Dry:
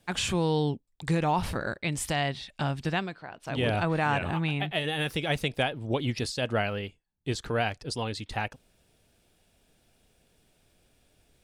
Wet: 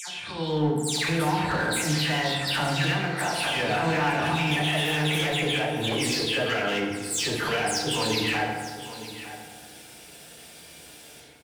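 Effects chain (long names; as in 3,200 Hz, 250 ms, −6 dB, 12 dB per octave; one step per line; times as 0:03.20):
every frequency bin delayed by itself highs early, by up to 236 ms
high-pass filter 110 Hz 12 dB per octave
tilt shelving filter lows −5 dB
downward compressor 12 to 1, threshold −38 dBFS, peak gain reduction 16 dB
brickwall limiter −36 dBFS, peak gain reduction 9 dB
automatic gain control gain up to 10.5 dB
gain into a clipping stage and back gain 31.5 dB
single-tap delay 911 ms −14 dB
feedback delay network reverb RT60 1.6 s, low-frequency decay 1.1×, high-frequency decay 0.5×, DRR −0.5 dB
level +6.5 dB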